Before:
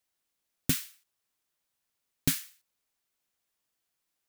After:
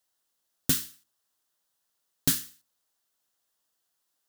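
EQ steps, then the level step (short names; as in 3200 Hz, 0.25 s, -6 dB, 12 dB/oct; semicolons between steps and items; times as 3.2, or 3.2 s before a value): low shelf 280 Hz -6.5 dB; bell 2300 Hz -10.5 dB 0.4 oct; notches 60/120/180/240/300/360/420/480 Hz; +4.5 dB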